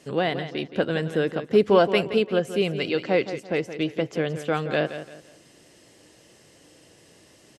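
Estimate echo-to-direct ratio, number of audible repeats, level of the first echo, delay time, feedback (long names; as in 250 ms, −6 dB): −11.0 dB, 3, −11.5 dB, 171 ms, 31%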